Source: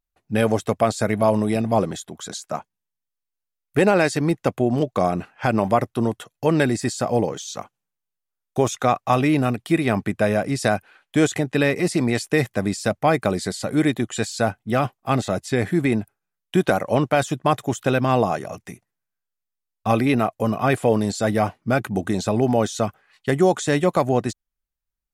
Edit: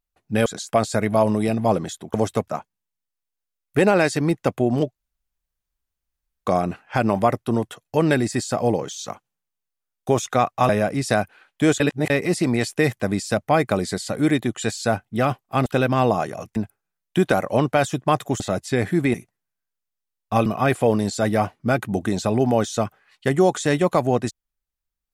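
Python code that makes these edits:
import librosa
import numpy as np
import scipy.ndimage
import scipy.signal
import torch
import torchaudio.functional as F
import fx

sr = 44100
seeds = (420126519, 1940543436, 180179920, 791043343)

y = fx.edit(x, sr, fx.swap(start_s=0.46, length_s=0.34, other_s=2.21, other_length_s=0.27),
    fx.insert_room_tone(at_s=4.95, length_s=1.51),
    fx.cut(start_s=9.18, length_s=1.05),
    fx.reverse_span(start_s=11.34, length_s=0.3),
    fx.swap(start_s=15.2, length_s=0.74, other_s=17.78, other_length_s=0.9),
    fx.cut(start_s=20.0, length_s=0.48), tone=tone)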